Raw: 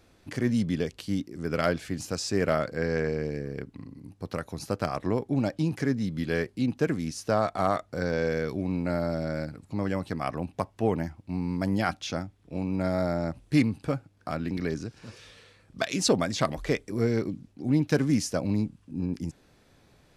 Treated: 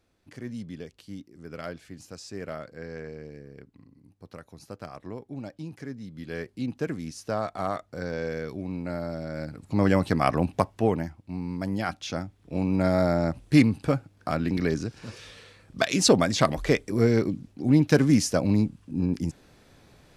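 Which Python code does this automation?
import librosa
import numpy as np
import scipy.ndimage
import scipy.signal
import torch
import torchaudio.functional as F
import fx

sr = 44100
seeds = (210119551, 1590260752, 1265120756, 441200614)

y = fx.gain(x, sr, db=fx.line((6.07, -11.0), (6.56, -4.0), (9.3, -4.0), (9.84, 8.0), (10.5, 8.0), (11.18, -2.5), (11.84, -2.5), (12.63, 4.5)))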